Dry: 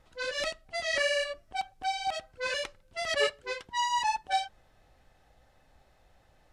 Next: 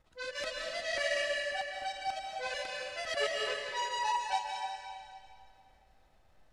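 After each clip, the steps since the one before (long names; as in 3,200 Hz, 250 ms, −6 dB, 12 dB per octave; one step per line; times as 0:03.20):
transient designer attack 0 dB, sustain −12 dB
convolution reverb RT60 2.3 s, pre-delay 110 ms, DRR −0.5 dB
level −6 dB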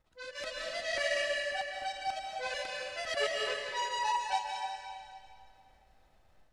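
automatic gain control gain up to 5.5 dB
level −5 dB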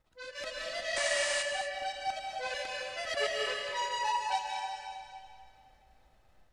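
sound drawn into the spectrogram noise, 0:00.96–0:01.43, 680–9,600 Hz −37 dBFS
reverb whose tail is shaped and stops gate 270 ms rising, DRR 8.5 dB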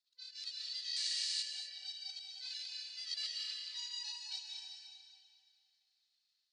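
four-pole ladder band-pass 4,700 Hz, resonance 70%
level +5.5 dB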